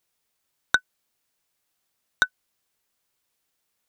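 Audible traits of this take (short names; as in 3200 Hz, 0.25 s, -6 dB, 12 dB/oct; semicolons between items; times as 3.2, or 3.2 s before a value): noise floor -77 dBFS; spectral tilt 0.0 dB/oct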